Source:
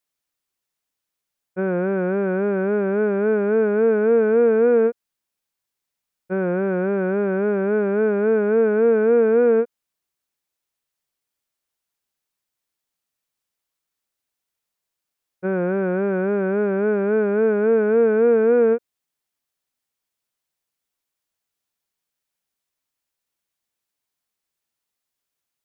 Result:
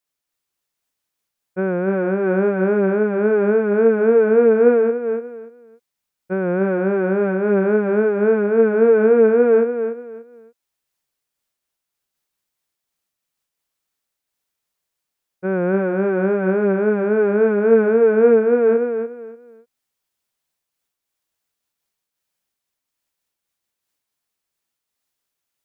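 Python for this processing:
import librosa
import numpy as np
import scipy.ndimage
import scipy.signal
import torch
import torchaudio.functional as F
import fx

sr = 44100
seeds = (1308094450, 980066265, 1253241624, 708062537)

y = fx.echo_feedback(x, sr, ms=292, feedback_pct=25, wet_db=-8.0)
y = fx.am_noise(y, sr, seeds[0], hz=5.7, depth_pct=55)
y = F.gain(torch.from_numpy(y), 5.0).numpy()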